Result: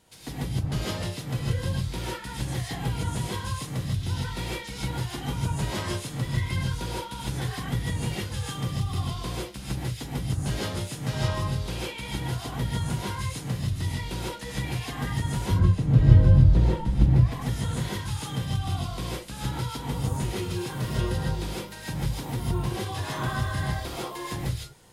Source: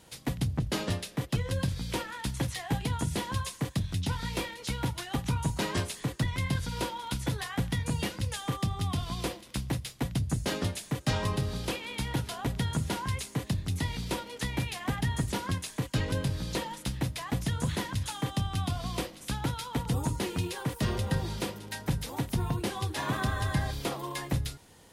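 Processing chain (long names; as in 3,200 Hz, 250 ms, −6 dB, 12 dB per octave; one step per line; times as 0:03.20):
0:15.43–0:17.30: spectral tilt −4 dB per octave
reverb whose tail is shaped and stops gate 180 ms rising, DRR −6.5 dB
level −6.5 dB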